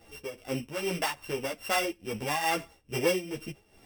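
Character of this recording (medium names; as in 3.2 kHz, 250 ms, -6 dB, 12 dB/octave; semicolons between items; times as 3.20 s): a buzz of ramps at a fixed pitch in blocks of 16 samples; tremolo triangle 2.4 Hz, depth 80%; a shimmering, thickened sound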